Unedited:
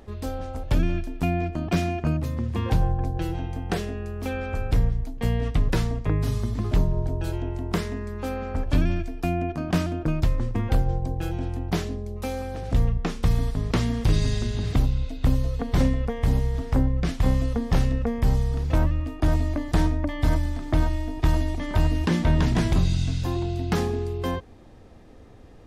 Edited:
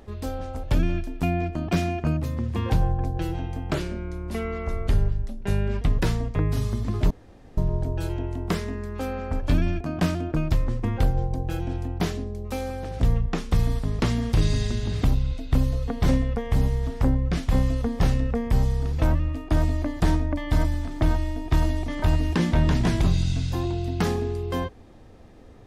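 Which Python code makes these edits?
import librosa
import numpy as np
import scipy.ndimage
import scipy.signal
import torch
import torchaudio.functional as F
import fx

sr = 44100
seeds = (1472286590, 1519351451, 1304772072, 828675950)

y = fx.edit(x, sr, fx.speed_span(start_s=3.71, length_s=1.81, speed=0.86),
    fx.insert_room_tone(at_s=6.81, length_s=0.47),
    fx.cut(start_s=9.04, length_s=0.48), tone=tone)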